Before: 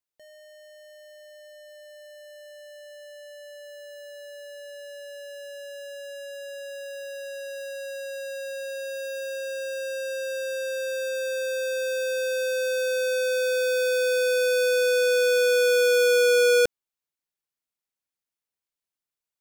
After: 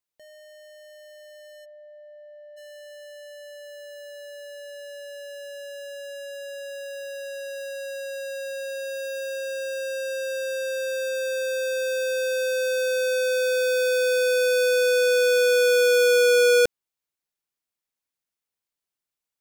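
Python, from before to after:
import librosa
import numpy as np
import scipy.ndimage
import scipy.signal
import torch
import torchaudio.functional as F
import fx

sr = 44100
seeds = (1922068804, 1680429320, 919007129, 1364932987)

y = fx.lowpass(x, sr, hz=1000.0, slope=12, at=(1.64, 2.56), fade=0.02)
y = y * librosa.db_to_amplitude(1.5)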